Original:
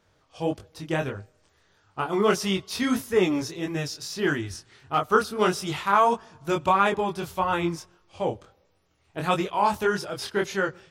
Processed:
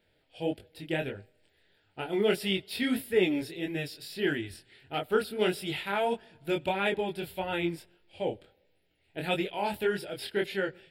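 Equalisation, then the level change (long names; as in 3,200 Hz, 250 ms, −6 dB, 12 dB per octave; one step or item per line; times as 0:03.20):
parametric band 85 Hz −9 dB 2.8 octaves
phaser with its sweep stopped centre 2,700 Hz, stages 4
0.0 dB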